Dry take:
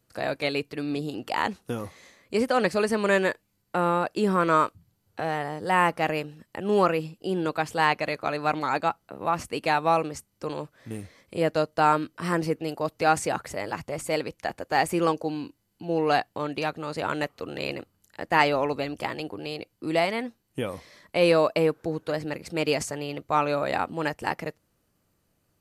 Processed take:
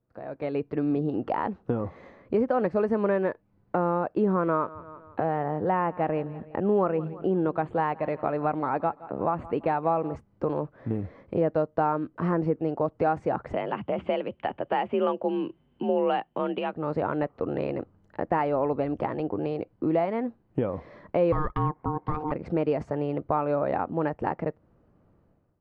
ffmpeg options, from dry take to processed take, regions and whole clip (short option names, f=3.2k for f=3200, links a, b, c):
-filter_complex "[0:a]asettb=1/sr,asplit=3[a][b][c];[a]atrim=end=4.454[d];[b]atrim=start=4.45:end=10.16,asetpts=PTS-STARTPTS,afade=t=in:d=0.004:c=qsin,afade=t=out:st=5.706:d=0.004:c=qsin,asuperstop=centerf=5500:order=4:qfactor=2.3,aecho=1:1:168|336|504:0.0794|0.031|0.0121,atrim=end_sample=251811[e];[c]atrim=start=10.156[f];[d][e]acrossfade=d=0.004:c1=hsin:c2=qsin[g];[g][f]acrossfade=d=0.004:c1=qsin:c2=hsin,asettb=1/sr,asplit=3[h][i][j];[h]atrim=end=13.534[k];[i]atrim=start=13.53:end=16.74,asetpts=PTS-STARTPTS,afade=t=in:d=0.004:c=qsin,afade=t=out:st=3.206:d=0.004:c=qsin,lowpass=f=3k:t=q:w=7.5,afreqshift=44[l];[j]atrim=start=16.736[m];[k][l]acrossfade=d=0.004:c1=hsin:c2=qsin[n];[n][m]acrossfade=d=0.004:c1=qsin:c2=hsin,asettb=1/sr,asplit=3[o][p][q];[o]atrim=end=21.324[r];[p]atrim=start=21.32:end=22.32,asetpts=PTS-STARTPTS,afade=t=in:d=0.004:c=qsin,afade=t=out:st=0.996:d=0.004:c=qsin,adynamicsmooth=sensitivity=8:basefreq=5.2k,aeval=exprs='val(0)*sin(2*PI*610*n/s)':c=same[s];[q]atrim=start=22.316[t];[r][s]acrossfade=d=0.004:c1=hsin:c2=qsin[u];[u][t]acrossfade=d=0.004:c1=qsin:c2=hsin,acompressor=threshold=-36dB:ratio=2.5,lowpass=1k,dynaudnorm=f=120:g=7:m=15.5dB,volume=-5dB"